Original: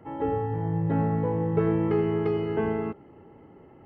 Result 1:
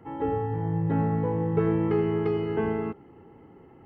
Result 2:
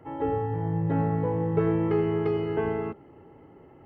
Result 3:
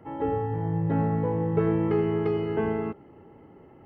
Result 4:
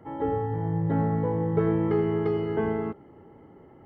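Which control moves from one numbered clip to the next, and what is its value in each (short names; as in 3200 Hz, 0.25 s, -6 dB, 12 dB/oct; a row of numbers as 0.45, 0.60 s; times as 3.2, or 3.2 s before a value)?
notch, frequency: 600, 210, 7300, 2600 Hz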